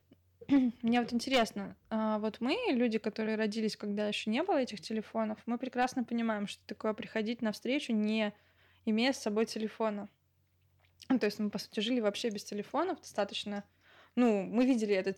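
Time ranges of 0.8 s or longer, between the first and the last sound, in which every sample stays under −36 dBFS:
0:10.03–0:11.02

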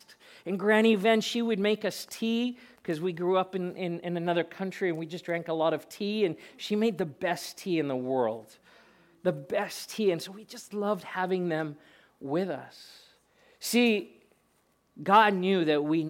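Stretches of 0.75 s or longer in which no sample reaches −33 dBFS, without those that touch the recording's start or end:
0:08.39–0:09.25
0:12.61–0:13.63
0:14.02–0:15.03

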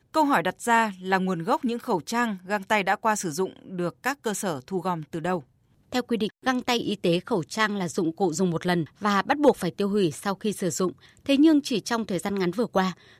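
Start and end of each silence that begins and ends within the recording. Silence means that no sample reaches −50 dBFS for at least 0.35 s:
0:05.44–0:05.92

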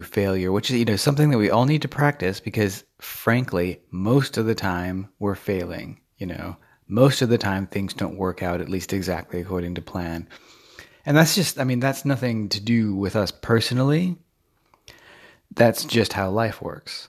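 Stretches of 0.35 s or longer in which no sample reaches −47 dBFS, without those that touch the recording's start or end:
0:14.21–0:14.74

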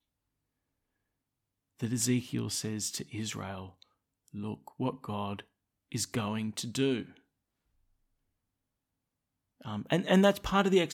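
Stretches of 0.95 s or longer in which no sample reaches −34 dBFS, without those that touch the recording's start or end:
0:07.02–0:09.66

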